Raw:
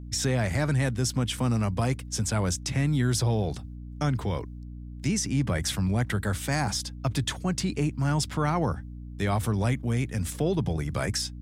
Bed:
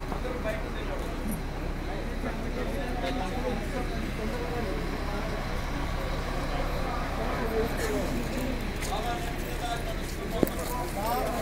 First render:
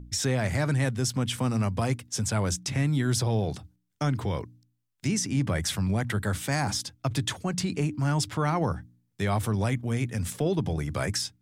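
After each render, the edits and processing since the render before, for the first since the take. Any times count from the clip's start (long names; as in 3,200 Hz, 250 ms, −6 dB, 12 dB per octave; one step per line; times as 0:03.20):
hum removal 60 Hz, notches 5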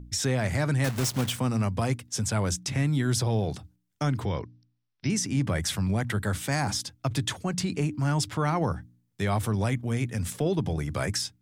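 0:00.84–0:01.39: one scale factor per block 3 bits
0:04.25–0:05.10: linear-phase brick-wall low-pass 6,000 Hz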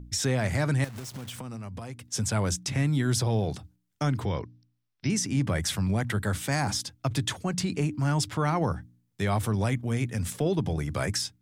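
0:00.84–0:02.11: downward compressor 8 to 1, threshold −35 dBFS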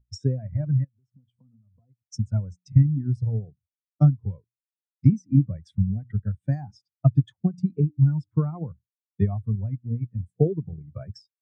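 transient designer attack +10 dB, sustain −3 dB
every bin expanded away from the loudest bin 2.5 to 1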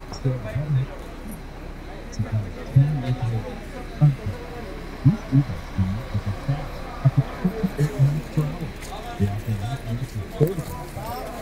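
mix in bed −3 dB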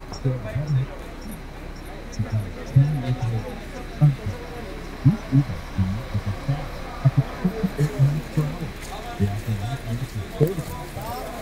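delay with a high-pass on its return 542 ms, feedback 83%, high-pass 1,500 Hz, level −8 dB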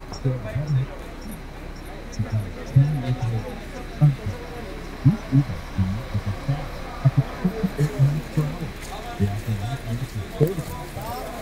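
no processing that can be heard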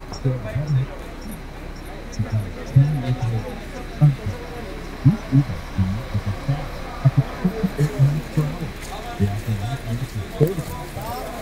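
level +2 dB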